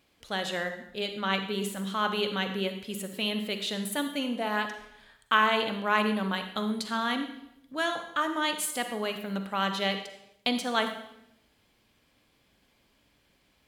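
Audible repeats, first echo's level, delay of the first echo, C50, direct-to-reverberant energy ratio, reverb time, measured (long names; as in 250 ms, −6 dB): no echo audible, no echo audible, no echo audible, 8.0 dB, 7.0 dB, 0.80 s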